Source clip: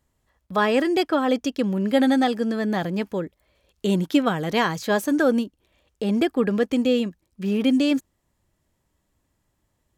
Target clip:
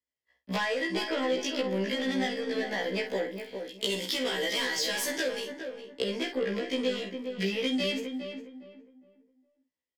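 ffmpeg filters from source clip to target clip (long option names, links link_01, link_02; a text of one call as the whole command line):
ffmpeg -i in.wav -filter_complex "[0:a]asplit=2[link_01][link_02];[link_02]highpass=frequency=720:poles=1,volume=19dB,asoftclip=type=tanh:threshold=-7.5dB[link_03];[link_01][link_03]amix=inputs=2:normalize=0,lowpass=frequency=5900:poles=1,volume=-6dB,asettb=1/sr,asplit=3[link_04][link_05][link_06];[link_04]atrim=end=3.144[link_07];[link_05]atrim=start=3.14:end=5.4,asetpts=PTS-STARTPTS,afade=type=in:duration=0.004:curve=qsin,afade=type=out:start_time=2.256:duration=0.004:curve=qsin,highshelf=frequency=3200:gain=11[link_08];[link_06]atrim=start=5.396[link_09];[link_07][link_08]acrossfade=duration=0.004:curve1=hsin:curve2=qsin[link_10];[link_10][link_09]acrossfade=duration=0.004:curve1=qsin:curve2=hsin,agate=range=-33dB:threshold=-44dB:ratio=3:detection=peak,asplit=2[link_11][link_12];[link_12]adelay=48,volume=-10dB[link_13];[link_11][link_13]amix=inputs=2:normalize=0,acrossover=split=280|3000[link_14][link_15][link_16];[link_14]acompressor=threshold=-30dB:ratio=6[link_17];[link_17][link_15][link_16]amix=inputs=3:normalize=0,equalizer=frequency=250:width_type=o:width=0.33:gain=5,equalizer=frequency=500:width_type=o:width=0.33:gain=8,equalizer=frequency=800:width_type=o:width=0.33:gain=-3,equalizer=frequency=1250:width_type=o:width=0.33:gain=-10,equalizer=frequency=2000:width_type=o:width=0.33:gain=11,equalizer=frequency=3150:width_type=o:width=0.33:gain=8,equalizer=frequency=5000:width_type=o:width=0.33:gain=11,asoftclip=type=tanh:threshold=-6.5dB,acompressor=threshold=-26dB:ratio=12,asplit=2[link_18][link_19];[link_19]adelay=410,lowpass=frequency=1400:poles=1,volume=-6dB,asplit=2[link_20][link_21];[link_21]adelay=410,lowpass=frequency=1400:poles=1,volume=0.3,asplit=2[link_22][link_23];[link_23]adelay=410,lowpass=frequency=1400:poles=1,volume=0.3,asplit=2[link_24][link_25];[link_25]adelay=410,lowpass=frequency=1400:poles=1,volume=0.3[link_26];[link_18][link_20][link_22][link_24][link_26]amix=inputs=5:normalize=0,afftfilt=real='re*1.73*eq(mod(b,3),0)':imag='im*1.73*eq(mod(b,3),0)':win_size=2048:overlap=0.75" out.wav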